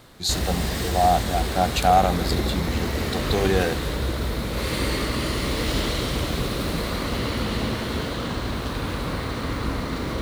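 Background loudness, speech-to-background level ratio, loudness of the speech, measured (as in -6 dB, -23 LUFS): -26.5 LUFS, 2.5 dB, -24.0 LUFS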